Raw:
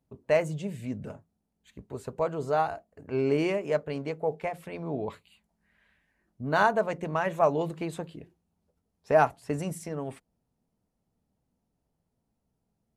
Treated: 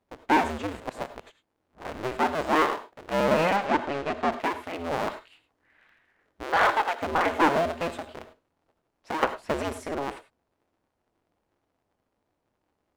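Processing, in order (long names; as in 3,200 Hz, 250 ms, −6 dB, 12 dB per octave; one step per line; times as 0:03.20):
sub-harmonics by changed cycles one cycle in 2, inverted
0:06.43–0:07.02: high-pass filter 560 Hz 12 dB per octave
0:07.88–0:09.23: downward compressor 4 to 1, threshold −37 dBFS, peak gain reduction 17.5 dB
mid-hump overdrive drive 14 dB, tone 1,900 Hz, clips at −10 dBFS
0:00.80–0:02.17: reverse
0:03.56–0:04.32: high-frequency loss of the air 66 metres
reverb whose tail is shaped and stops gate 120 ms rising, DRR 12 dB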